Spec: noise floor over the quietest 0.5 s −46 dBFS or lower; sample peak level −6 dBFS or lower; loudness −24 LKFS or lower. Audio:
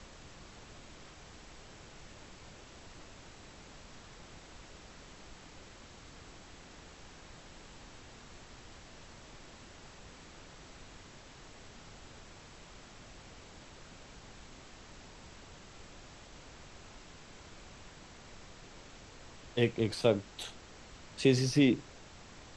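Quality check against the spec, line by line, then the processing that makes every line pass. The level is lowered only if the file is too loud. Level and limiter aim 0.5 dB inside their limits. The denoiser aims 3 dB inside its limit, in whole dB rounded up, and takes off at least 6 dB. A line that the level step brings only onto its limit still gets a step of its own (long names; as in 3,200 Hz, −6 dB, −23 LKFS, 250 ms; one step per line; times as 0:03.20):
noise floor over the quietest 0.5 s −53 dBFS: in spec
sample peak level −13.0 dBFS: in spec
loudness −30.5 LKFS: in spec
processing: no processing needed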